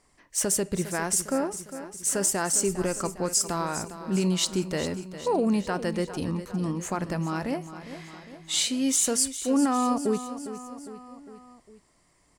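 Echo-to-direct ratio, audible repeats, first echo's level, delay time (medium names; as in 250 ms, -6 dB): -11.0 dB, 4, -12.5 dB, 405 ms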